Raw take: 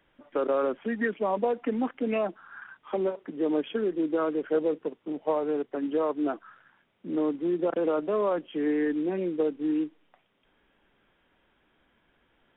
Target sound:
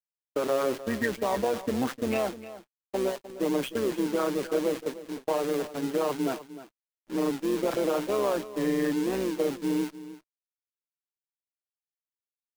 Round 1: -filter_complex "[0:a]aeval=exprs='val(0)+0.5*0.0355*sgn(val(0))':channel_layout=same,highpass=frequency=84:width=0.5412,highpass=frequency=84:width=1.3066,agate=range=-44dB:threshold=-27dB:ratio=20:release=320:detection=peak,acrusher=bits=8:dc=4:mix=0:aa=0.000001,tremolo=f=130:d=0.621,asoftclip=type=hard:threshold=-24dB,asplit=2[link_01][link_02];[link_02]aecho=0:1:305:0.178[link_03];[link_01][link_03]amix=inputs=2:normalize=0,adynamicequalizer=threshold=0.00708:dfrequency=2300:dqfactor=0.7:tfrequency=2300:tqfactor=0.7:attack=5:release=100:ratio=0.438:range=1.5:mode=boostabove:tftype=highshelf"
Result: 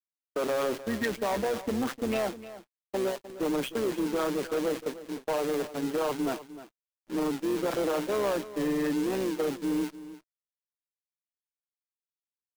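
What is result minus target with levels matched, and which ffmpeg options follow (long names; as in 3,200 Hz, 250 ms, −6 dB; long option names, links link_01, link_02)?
hard clipping: distortion +30 dB
-filter_complex "[0:a]aeval=exprs='val(0)+0.5*0.0355*sgn(val(0))':channel_layout=same,highpass=frequency=84:width=0.5412,highpass=frequency=84:width=1.3066,agate=range=-44dB:threshold=-27dB:ratio=20:release=320:detection=peak,acrusher=bits=8:dc=4:mix=0:aa=0.000001,tremolo=f=130:d=0.621,asoftclip=type=hard:threshold=-16dB,asplit=2[link_01][link_02];[link_02]aecho=0:1:305:0.178[link_03];[link_01][link_03]amix=inputs=2:normalize=0,adynamicequalizer=threshold=0.00708:dfrequency=2300:dqfactor=0.7:tfrequency=2300:tqfactor=0.7:attack=5:release=100:ratio=0.438:range=1.5:mode=boostabove:tftype=highshelf"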